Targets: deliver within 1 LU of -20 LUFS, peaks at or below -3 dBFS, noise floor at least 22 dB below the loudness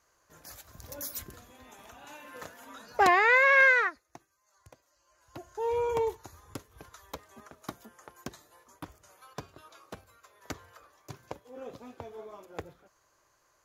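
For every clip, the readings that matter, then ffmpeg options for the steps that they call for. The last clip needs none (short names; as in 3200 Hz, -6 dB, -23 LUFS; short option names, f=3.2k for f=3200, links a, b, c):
loudness -24.5 LUFS; peak -10.5 dBFS; loudness target -20.0 LUFS
-> -af "volume=4.5dB"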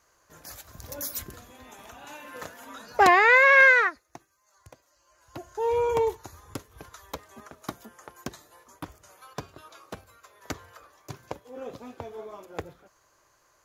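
loudness -20.0 LUFS; peak -6.0 dBFS; noise floor -67 dBFS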